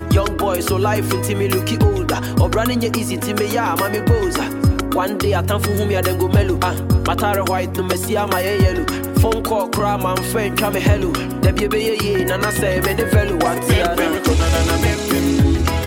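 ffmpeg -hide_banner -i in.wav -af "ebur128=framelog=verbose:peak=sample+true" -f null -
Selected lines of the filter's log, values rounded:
Integrated loudness:
  I:         -17.7 LUFS
  Threshold: -27.7 LUFS
Loudness range:
  LRA:         1.3 LU
  Threshold: -37.8 LUFS
  LRA low:   -18.2 LUFS
  LRA high:  -16.9 LUFS
Sample peak:
  Peak:       -4.3 dBFS
True peak:
  Peak:       -4.2 dBFS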